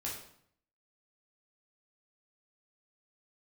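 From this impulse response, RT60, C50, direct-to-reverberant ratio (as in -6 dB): 0.65 s, 4.0 dB, -5.0 dB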